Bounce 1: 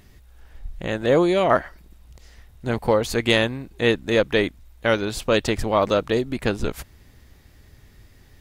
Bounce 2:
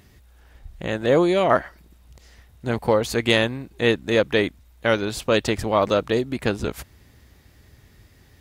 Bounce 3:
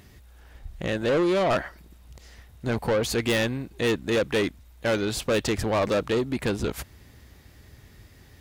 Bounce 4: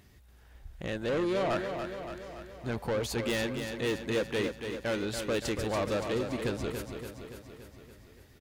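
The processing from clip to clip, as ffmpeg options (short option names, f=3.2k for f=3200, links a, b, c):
-af "highpass=50"
-af "asoftclip=type=tanh:threshold=-20.5dB,volume=1.5dB"
-af "aecho=1:1:285|570|855|1140|1425|1710|1995|2280:0.447|0.268|0.161|0.0965|0.0579|0.0347|0.0208|0.0125,volume=-7.5dB"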